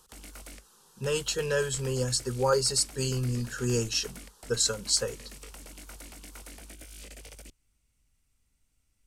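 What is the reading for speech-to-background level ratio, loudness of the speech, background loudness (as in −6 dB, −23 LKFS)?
18.0 dB, −28.5 LKFS, −46.5 LKFS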